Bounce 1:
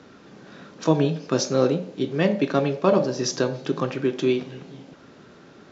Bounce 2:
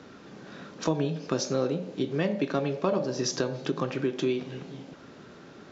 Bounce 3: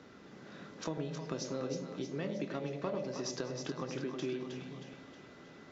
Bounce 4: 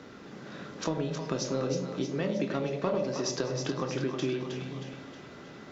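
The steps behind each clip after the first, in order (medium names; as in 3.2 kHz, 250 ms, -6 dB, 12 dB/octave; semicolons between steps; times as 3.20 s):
compression 2.5:1, threshold -26 dBFS, peak gain reduction 9 dB
compression 1.5:1, threshold -35 dBFS, peak gain reduction 5.5 dB; whistle 2 kHz -63 dBFS; two-band feedback delay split 640 Hz, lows 99 ms, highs 315 ms, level -6 dB; trim -7 dB
reverberation RT60 0.30 s, pre-delay 22 ms, DRR 11 dB; trim +7 dB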